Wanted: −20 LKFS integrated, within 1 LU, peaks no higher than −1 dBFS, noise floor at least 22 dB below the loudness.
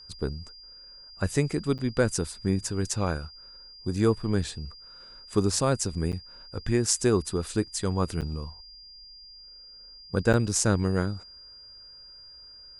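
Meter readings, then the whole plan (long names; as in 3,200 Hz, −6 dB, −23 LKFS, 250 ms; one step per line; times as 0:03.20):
number of dropouts 4; longest dropout 8.0 ms; interfering tone 4,800 Hz; level of the tone −46 dBFS; integrated loudness −27.5 LKFS; sample peak −6.0 dBFS; target loudness −20.0 LKFS
→ repair the gap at 0:01.78/0:06.12/0:08.21/0:10.33, 8 ms
notch filter 4,800 Hz, Q 30
level +7.5 dB
brickwall limiter −1 dBFS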